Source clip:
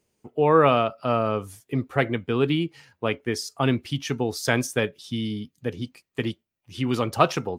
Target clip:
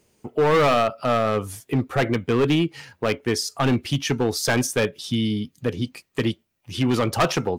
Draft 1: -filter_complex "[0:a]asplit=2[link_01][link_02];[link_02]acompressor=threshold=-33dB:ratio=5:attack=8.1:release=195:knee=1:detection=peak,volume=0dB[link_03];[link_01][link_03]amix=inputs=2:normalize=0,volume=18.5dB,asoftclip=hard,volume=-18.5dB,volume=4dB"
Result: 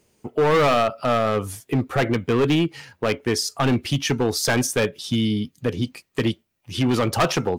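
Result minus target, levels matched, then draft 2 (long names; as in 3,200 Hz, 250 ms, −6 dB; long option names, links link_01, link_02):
downward compressor: peak gain reduction −7 dB
-filter_complex "[0:a]asplit=2[link_01][link_02];[link_02]acompressor=threshold=-42dB:ratio=5:attack=8.1:release=195:knee=1:detection=peak,volume=0dB[link_03];[link_01][link_03]amix=inputs=2:normalize=0,volume=18.5dB,asoftclip=hard,volume=-18.5dB,volume=4dB"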